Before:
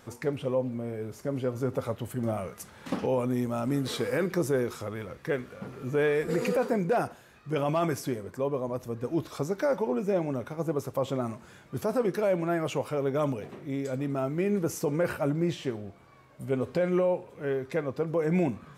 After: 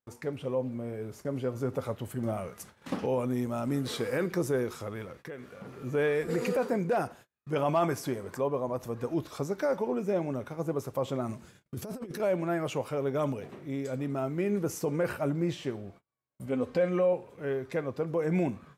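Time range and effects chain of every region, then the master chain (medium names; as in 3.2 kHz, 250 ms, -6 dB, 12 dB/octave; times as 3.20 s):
5.06–5.78 s: bass shelf 72 Hz -9 dB + compression 5:1, threshold -36 dBFS
7.53–9.14 s: peaking EQ 880 Hz +4.5 dB 1.3 oct + upward compressor, threshold -35 dBFS + tape noise reduction on one side only encoder only
11.29–12.20 s: peaking EQ 1 kHz -7.5 dB 2.4 oct + compressor with a negative ratio -34 dBFS, ratio -0.5
16.46–17.13 s: treble shelf 11 kHz -9 dB + comb 3.9 ms, depth 48%
whole clip: gate -48 dBFS, range -35 dB; level rider gain up to 3 dB; trim -5 dB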